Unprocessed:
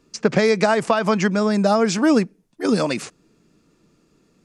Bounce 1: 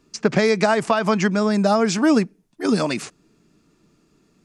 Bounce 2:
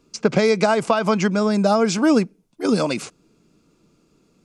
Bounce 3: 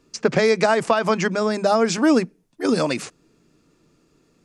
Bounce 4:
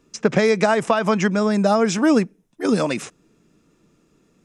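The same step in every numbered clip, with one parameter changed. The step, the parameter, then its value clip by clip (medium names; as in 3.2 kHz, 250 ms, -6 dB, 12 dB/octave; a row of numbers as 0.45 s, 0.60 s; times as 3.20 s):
band-stop, frequency: 510 Hz, 1.8 kHz, 200 Hz, 4.5 kHz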